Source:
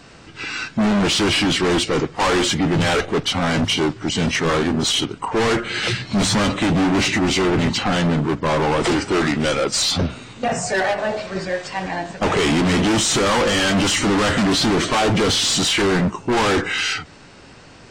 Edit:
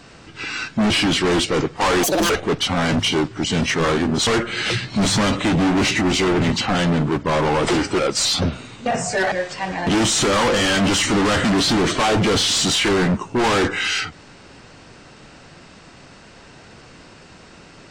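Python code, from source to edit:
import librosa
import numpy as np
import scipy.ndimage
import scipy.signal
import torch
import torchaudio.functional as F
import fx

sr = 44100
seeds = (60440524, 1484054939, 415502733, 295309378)

y = fx.edit(x, sr, fx.cut(start_s=0.9, length_s=0.39),
    fx.speed_span(start_s=2.42, length_s=0.53, speed=1.98),
    fx.cut(start_s=4.92, length_s=0.52),
    fx.cut(start_s=9.16, length_s=0.4),
    fx.cut(start_s=10.89, length_s=0.57),
    fx.cut(start_s=12.01, length_s=0.79), tone=tone)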